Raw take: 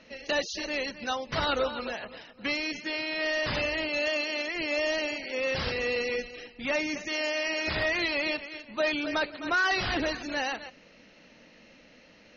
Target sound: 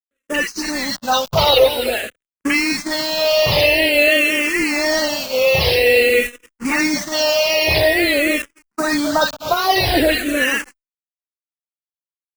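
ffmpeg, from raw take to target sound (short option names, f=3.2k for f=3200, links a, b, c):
-filter_complex "[0:a]asettb=1/sr,asplit=3[a][b][c];[a]atrim=end=7.734[d];[b]atrim=start=7.73:end=10.04,asetpts=PTS-STARTPTS,afade=t=in:d=0.004:c=qsin,afade=t=out:st=2.306:d=0.004:c=qsin,equalizer=f=2.7k:t=o:w=0.89:g=-7[e];[c]atrim=start=10.036[f];[d][e]acrossfade=d=0.004:c1=hsin:c2=qsin[g];[g][f]acrossfade=d=0.004:c1=qsin:c2=hsin,acontrast=24,lowshelf=f=89:g=-3,acrossover=split=1300[h][i];[i]adelay=50[j];[h][j]amix=inputs=2:normalize=0,afftfilt=real='re*gte(hypot(re,im),0.0141)':imag='im*gte(hypot(re,im),0.0141)':win_size=1024:overlap=0.75,acrusher=bits=5:mix=0:aa=0.000001,dynaudnorm=f=130:g=11:m=4dB,agate=range=-48dB:threshold=-29dB:ratio=16:detection=peak,asplit=2[k][l];[l]afreqshift=-0.49[m];[k][m]amix=inputs=2:normalize=1,volume=8.5dB"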